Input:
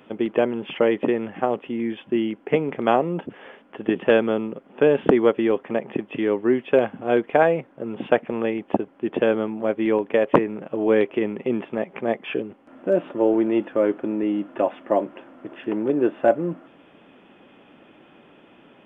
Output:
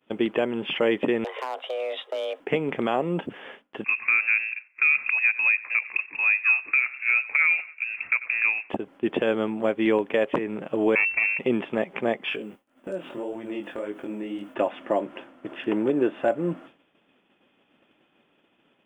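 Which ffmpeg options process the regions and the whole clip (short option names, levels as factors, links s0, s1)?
-filter_complex "[0:a]asettb=1/sr,asplit=3[s0][s1][s2];[s0]atrim=end=1.244[s3];[s1]atrim=start=1.24:end=2.4,asetpts=PTS-STARTPTS,afade=t=in:d=0.004:c=qsin,afade=t=out:st=1.156:d=0.004:c=qsin,acompressor=threshold=0.0562:ratio=10:attack=3.2:release=140:knee=1:detection=peak,aeval=exprs='clip(val(0),-1,0.0473)':c=same,afreqshift=260[s4];[s2]atrim=start=2.396[s5];[s3][s4]acrossfade=d=0.004:c1=hsin:c2=qsin[s6];[s6][s5]acrossfade=d=0.004:c1=qsin:c2=hsin,asettb=1/sr,asplit=3[s7][s8][s9];[s7]atrim=end=3.844[s10];[s8]atrim=start=3.84:end=8.7,asetpts=PTS-STARTPTS,afade=t=in:d=0.004:c=qsin,afade=t=out:st=4.856:d=0.004:c=qsin,acrossover=split=390 2000:gain=0.178 1 0.158[s11][s12][s13];[s11][s12][s13]amix=inputs=3:normalize=0,aecho=1:1:91|182|273:0.0841|0.0362|0.0156,atrim=end_sample=214326,lowpass=f=2500:t=q:w=0.5098,lowpass=f=2500:t=q:w=0.6013,lowpass=f=2500:t=q:w=0.9,lowpass=f=2500:t=q:w=2.563,afreqshift=-2900[s14];[s9]atrim=start=8.696[s15];[s10][s14]acrossfade=d=0.004:c1=hsin:c2=qsin[s16];[s16][s15]acrossfade=d=0.004:c1=qsin:c2=hsin,asettb=1/sr,asplit=3[s17][s18][s19];[s17]atrim=end=10.954[s20];[s18]atrim=start=10.95:end=11.39,asetpts=PTS-STARTPTS,afade=t=in:d=0.004:c=qsin,afade=t=out:st=0.436:d=0.004:c=qsin,highpass=f=74:w=0.5412,highpass=f=74:w=1.3066,aeval=exprs='max(val(0),0)':c=same,lowpass=f=2300:t=q:w=0.5098,lowpass=f=2300:t=q:w=0.6013,lowpass=f=2300:t=q:w=0.9,lowpass=f=2300:t=q:w=2.563,afreqshift=-2700[s21];[s19]atrim=start=11.386[s22];[s20][s21]acrossfade=d=0.004:c1=hsin:c2=qsin[s23];[s23][s22]acrossfade=d=0.004:c1=qsin:c2=hsin,asettb=1/sr,asplit=3[s24][s25][s26];[s24]atrim=end=12.294[s27];[s25]atrim=start=12.29:end=14.55,asetpts=PTS-STARTPTS,afade=t=in:d=0.004:c=qsin,afade=t=out:st=2.256:d=0.004:c=qsin,aemphasis=mode=production:type=50fm,acompressor=threshold=0.0501:ratio=5:attack=3.2:release=140:knee=1:detection=peak,flanger=delay=19:depth=5.3:speed=1.8[s28];[s26]atrim=start=14.546[s29];[s27][s28]acrossfade=d=0.004:c1=hsin:c2=qsin[s30];[s30][s29]acrossfade=d=0.004:c1=qsin:c2=hsin,agate=range=0.0224:threshold=0.01:ratio=3:detection=peak,highshelf=f=2500:g=10.5,alimiter=limit=0.251:level=0:latency=1:release=188"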